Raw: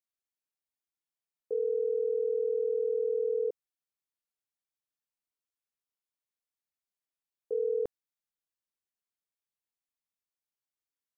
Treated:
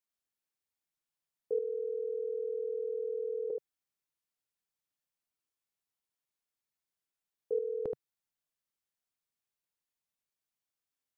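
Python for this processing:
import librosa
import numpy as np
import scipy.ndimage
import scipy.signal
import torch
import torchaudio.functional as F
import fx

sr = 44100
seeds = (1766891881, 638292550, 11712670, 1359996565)

p1 = fx.peak_eq(x, sr, hz=140.0, db=3.5, octaves=0.77)
y = p1 + fx.echo_single(p1, sr, ms=76, db=-5.0, dry=0)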